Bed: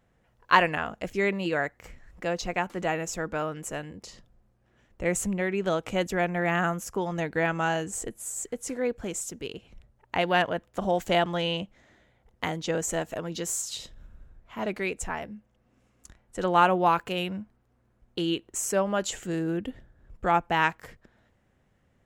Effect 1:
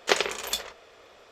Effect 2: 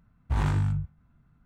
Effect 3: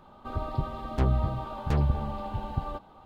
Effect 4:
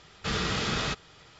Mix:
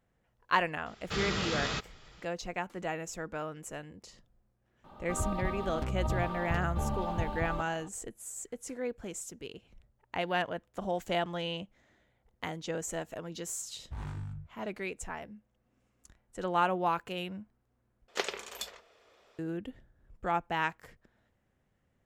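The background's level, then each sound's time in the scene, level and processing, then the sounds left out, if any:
bed −7.5 dB
0:00.86: mix in 4 −4 dB
0:04.84: mix in 3 −2.5 dB + compressor whose output falls as the input rises −28 dBFS
0:13.61: mix in 2 −14.5 dB
0:18.08: overwrite with 1 −10.5 dB

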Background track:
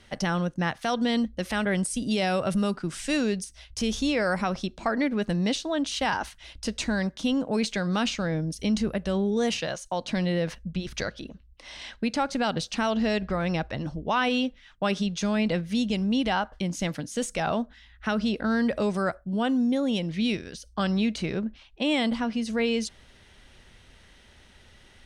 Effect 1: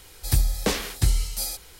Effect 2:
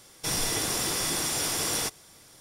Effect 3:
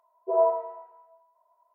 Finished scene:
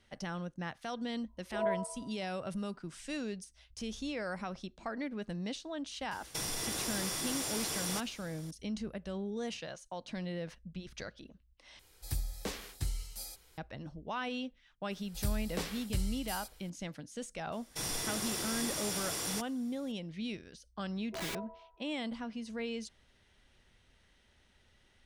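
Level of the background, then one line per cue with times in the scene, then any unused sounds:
background track −13 dB
0:01.25: mix in 3 −10.5 dB + parametric band 430 Hz −3 dB
0:06.11: mix in 2 −2 dB + downward compressor, threshold −31 dBFS
0:11.79: overwrite with 1 −15 dB
0:14.91: mix in 1 −13.5 dB + notch filter 6,500 Hz, Q 17
0:17.52: mix in 2 −8.5 dB
0:20.85: mix in 3 −14.5 dB + wrap-around overflow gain 20.5 dB

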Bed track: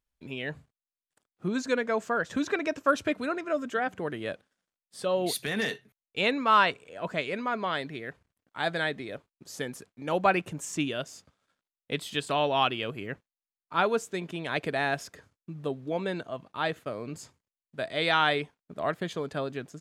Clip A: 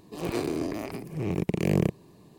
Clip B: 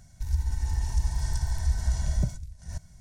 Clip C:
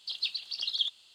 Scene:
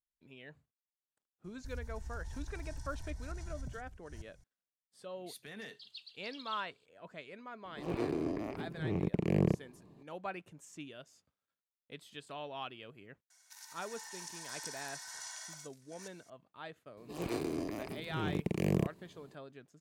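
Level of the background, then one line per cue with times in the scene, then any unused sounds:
bed track −17.5 dB
0:01.44: mix in B −12.5 dB + downward compressor 3 to 1, threshold −27 dBFS
0:05.72: mix in C −18 dB
0:07.65: mix in A −5 dB + low-pass filter 1,900 Hz 6 dB per octave
0:13.30: mix in B −1.5 dB + high-pass filter 990 Hz 24 dB per octave
0:16.97: mix in A −7 dB

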